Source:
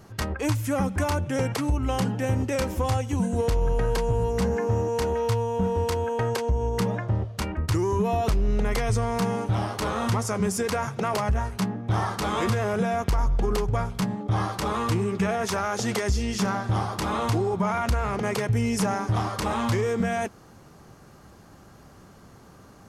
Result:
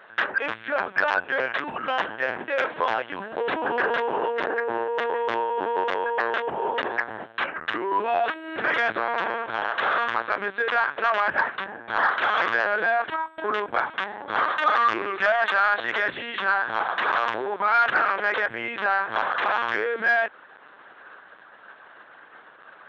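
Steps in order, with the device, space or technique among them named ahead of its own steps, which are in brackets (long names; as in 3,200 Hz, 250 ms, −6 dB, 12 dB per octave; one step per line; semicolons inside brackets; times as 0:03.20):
0:13.85–0:15.52: comb filter 3.3 ms, depth 93%
talking toy (linear-prediction vocoder at 8 kHz pitch kept; high-pass filter 660 Hz 12 dB per octave; parametric band 1,600 Hz +11.5 dB 0.46 octaves; soft clipping −14.5 dBFS, distortion −23 dB)
level +5.5 dB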